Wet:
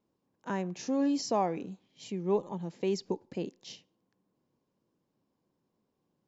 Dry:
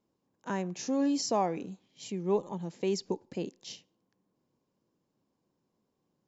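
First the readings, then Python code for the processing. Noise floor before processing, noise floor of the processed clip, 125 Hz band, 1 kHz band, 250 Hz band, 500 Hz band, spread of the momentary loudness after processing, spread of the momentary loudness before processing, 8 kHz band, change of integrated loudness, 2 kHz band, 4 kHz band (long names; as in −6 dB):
−81 dBFS, −81 dBFS, 0.0 dB, −0.5 dB, 0.0 dB, 0.0 dB, 18 LU, 17 LU, can't be measured, −0.5 dB, −0.5 dB, −2.5 dB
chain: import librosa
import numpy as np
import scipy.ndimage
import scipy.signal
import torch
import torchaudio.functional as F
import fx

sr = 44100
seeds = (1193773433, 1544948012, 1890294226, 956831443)

y = fx.air_absorb(x, sr, metres=63.0)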